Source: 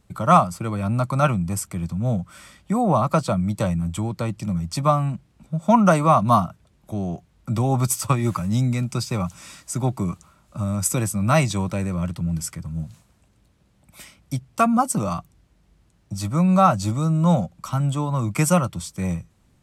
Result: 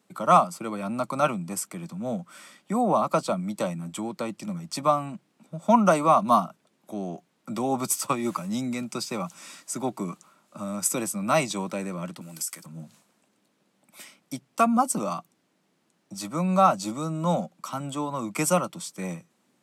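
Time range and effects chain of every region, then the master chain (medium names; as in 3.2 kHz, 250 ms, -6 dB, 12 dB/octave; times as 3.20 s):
12.21–12.66 s: RIAA curve recording + compression, threshold -25 dBFS
whole clip: high-pass 210 Hz 24 dB/octave; dynamic bell 1.7 kHz, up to -5 dB, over -42 dBFS, Q 3.6; trim -2 dB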